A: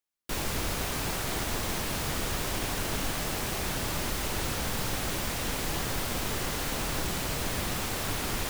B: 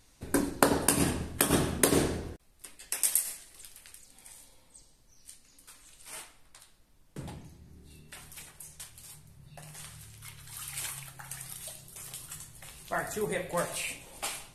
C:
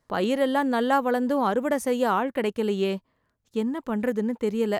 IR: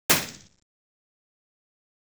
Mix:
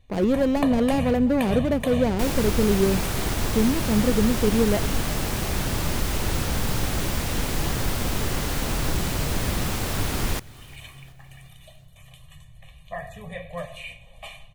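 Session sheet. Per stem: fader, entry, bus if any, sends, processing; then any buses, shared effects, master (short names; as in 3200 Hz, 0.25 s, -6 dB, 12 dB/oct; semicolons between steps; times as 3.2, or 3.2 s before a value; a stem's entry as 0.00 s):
+2.5 dB, 1.90 s, no send, echo send -23.5 dB, dry
-3.5 dB, 0.00 s, no send, no echo send, resonant high shelf 6700 Hz -12 dB, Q 1.5; fixed phaser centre 1400 Hz, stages 6; comb 1.7 ms, depth 82%
+1.5 dB, 0.00 s, no send, echo send -22 dB, median filter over 41 samples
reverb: off
echo: feedback echo 0.365 s, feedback 52%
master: low shelf 270 Hz +7.5 dB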